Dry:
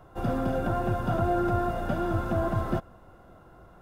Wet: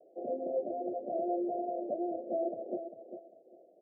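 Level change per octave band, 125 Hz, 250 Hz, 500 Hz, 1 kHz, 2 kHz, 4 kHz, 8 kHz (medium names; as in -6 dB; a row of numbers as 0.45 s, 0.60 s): under -35 dB, -8.5 dB, -3.5 dB, -8.5 dB, under -40 dB, under -35 dB, no reading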